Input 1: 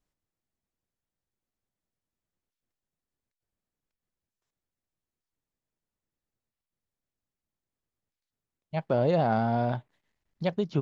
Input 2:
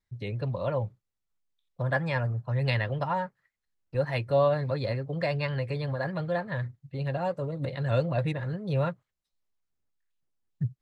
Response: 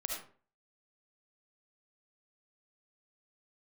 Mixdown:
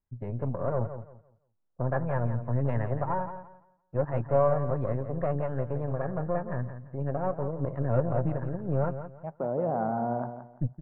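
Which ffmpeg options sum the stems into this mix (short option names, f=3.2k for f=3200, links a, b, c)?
-filter_complex "[0:a]highpass=160,acompressor=threshold=-35dB:ratio=1.5,adelay=500,volume=2dB,asplit=2[a][b];[b]volume=-10dB[c];[1:a]aeval=exprs='0.224*(cos(1*acos(clip(val(0)/0.224,-1,1)))-cos(1*PI/2))+0.0178*(cos(3*acos(clip(val(0)/0.224,-1,1)))-cos(3*PI/2))+0.0178*(cos(8*acos(clip(val(0)/0.224,-1,1)))-cos(8*PI/2))':c=same,volume=1dB,asplit=3[d][e][f];[e]volume=-10.5dB[g];[f]apad=whole_len=499036[h];[a][h]sidechaincompress=threshold=-29dB:ratio=8:attack=9.6:release=1240[i];[c][g]amix=inputs=2:normalize=0,aecho=0:1:170|340|510|680:1|0.25|0.0625|0.0156[j];[i][d][j]amix=inputs=3:normalize=0,lowpass=f=1.3k:w=0.5412,lowpass=f=1.3k:w=1.3066"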